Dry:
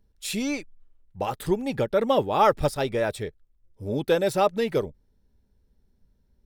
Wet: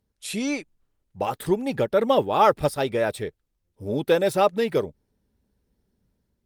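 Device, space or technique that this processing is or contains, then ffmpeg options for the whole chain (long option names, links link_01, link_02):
video call: -af "highpass=frequency=120:poles=1,dynaudnorm=framelen=120:gausssize=5:maxgain=4.5dB,volume=-2dB" -ar 48000 -c:a libopus -b:a 32k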